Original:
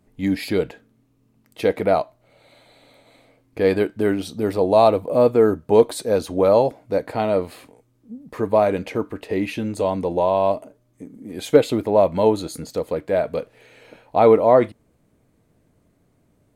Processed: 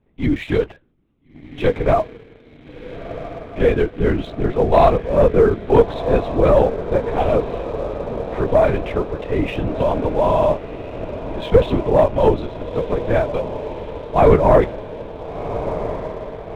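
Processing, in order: LPC vocoder at 8 kHz whisper; diffused feedback echo 1.385 s, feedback 67%, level -12 dB; sample leveller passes 1; gain -1 dB

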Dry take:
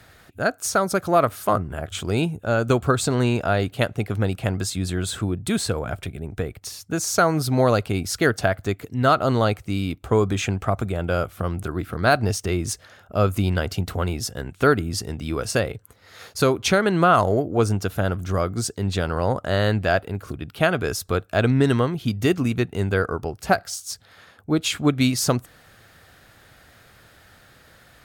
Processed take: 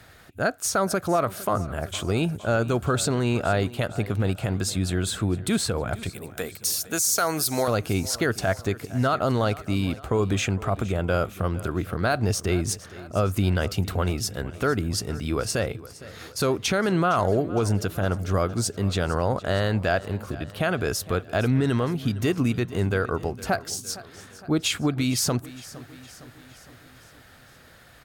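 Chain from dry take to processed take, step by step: 6.09–7.68 RIAA curve recording; limiter -13 dBFS, peak gain reduction 9.5 dB; feedback echo 0.461 s, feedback 56%, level -18 dB

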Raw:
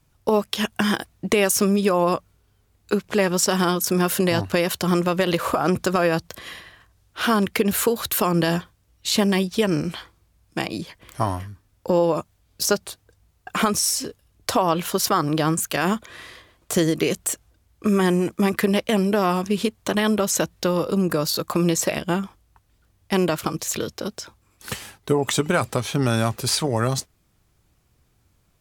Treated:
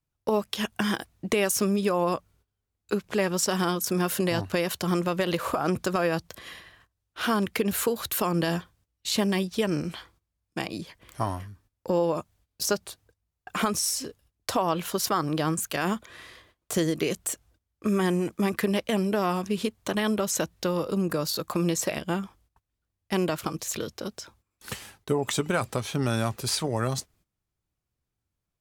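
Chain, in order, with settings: gate -53 dBFS, range -15 dB; gain -5.5 dB

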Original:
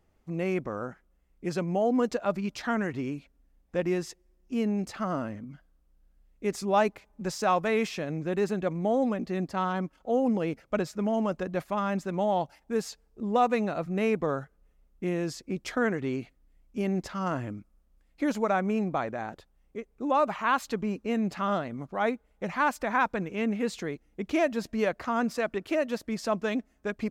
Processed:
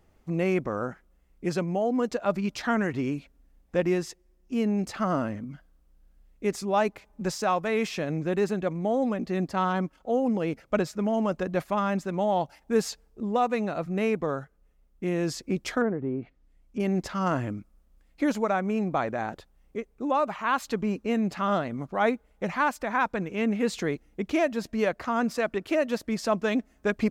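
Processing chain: vocal rider within 5 dB 0.5 s; 15.81–16.8 treble ducked by the level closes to 830 Hz, closed at -28 dBFS; gain +2 dB

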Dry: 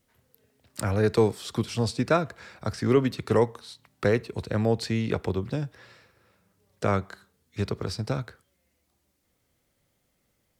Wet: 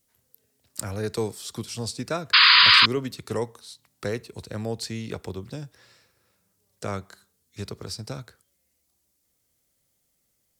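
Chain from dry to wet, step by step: tone controls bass 0 dB, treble +12 dB; painted sound noise, 2.33–2.86, 960–5000 Hz -8 dBFS; gain -6.5 dB

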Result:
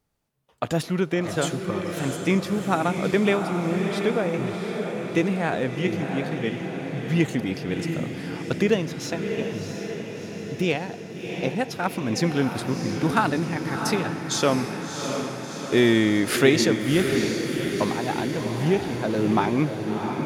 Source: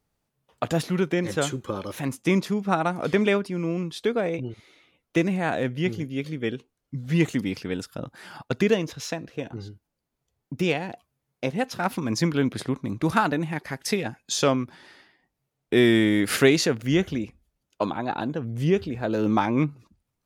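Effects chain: diffused feedback echo 0.688 s, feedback 64%, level -6 dB; on a send at -22 dB: reverb RT60 4.1 s, pre-delay 68 ms

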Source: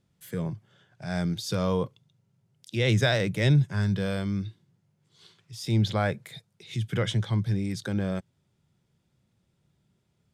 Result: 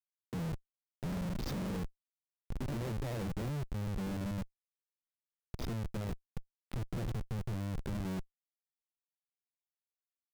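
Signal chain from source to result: LPF 5000 Hz 24 dB/oct; bell 1800 Hz -14 dB 2.1 oct; compressor 6:1, threshold -34 dBFS, peak gain reduction 15 dB; 0.52–3.07 echoes that change speed 0.108 s, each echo +2 st, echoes 3, each echo -6 dB; HPF 150 Hz 12 dB/oct; Schmitt trigger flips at -41 dBFS; low shelf 390 Hz +6.5 dB; gain +1.5 dB

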